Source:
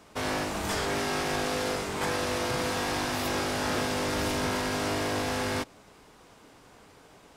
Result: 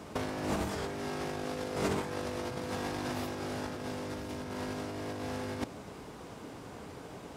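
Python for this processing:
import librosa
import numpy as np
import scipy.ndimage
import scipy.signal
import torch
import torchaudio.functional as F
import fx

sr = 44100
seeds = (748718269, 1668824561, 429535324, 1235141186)

y = scipy.signal.sosfilt(scipy.signal.butter(2, 63.0, 'highpass', fs=sr, output='sos'), x)
y = fx.tilt_shelf(y, sr, db=4.5, hz=730.0)
y = fx.over_compress(y, sr, threshold_db=-34.0, ratio=-0.5)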